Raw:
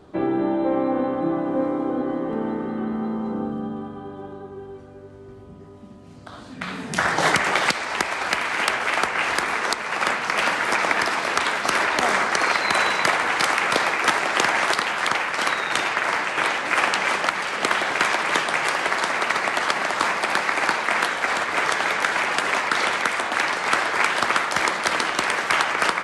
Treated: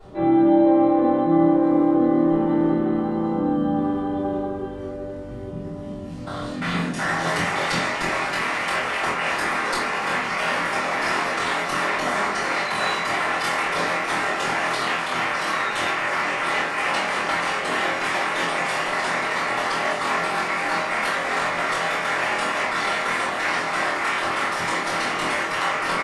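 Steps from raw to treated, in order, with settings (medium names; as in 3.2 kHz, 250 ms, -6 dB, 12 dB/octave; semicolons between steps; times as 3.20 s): reverse; compression 10:1, threshold -28 dBFS, peak gain reduction 15 dB; reverse; doubling 24 ms -3 dB; simulated room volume 57 m³, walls mixed, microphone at 3.2 m; trim -7 dB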